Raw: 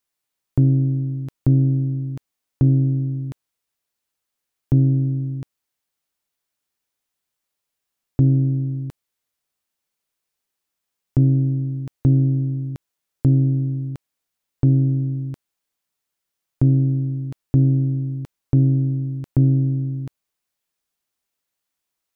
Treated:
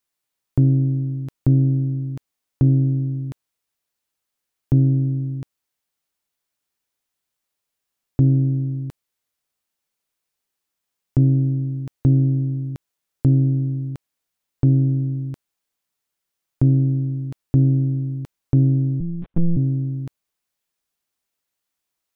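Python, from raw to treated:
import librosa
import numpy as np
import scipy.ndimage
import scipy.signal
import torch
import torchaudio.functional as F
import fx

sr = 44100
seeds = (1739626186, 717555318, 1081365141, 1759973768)

y = fx.lpc_monotone(x, sr, seeds[0], pitch_hz=170.0, order=10, at=(19.0, 19.57))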